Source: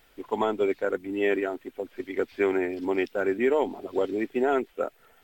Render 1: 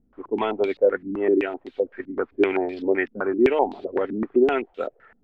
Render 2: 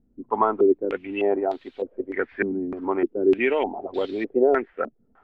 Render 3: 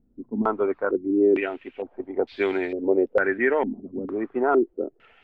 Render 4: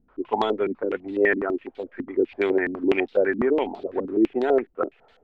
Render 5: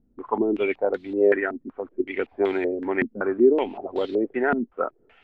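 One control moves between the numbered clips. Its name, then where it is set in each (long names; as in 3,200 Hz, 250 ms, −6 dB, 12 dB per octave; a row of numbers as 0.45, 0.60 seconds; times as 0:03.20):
low-pass on a step sequencer, speed: 7.8, 3.3, 2.2, 12, 5.3 Hertz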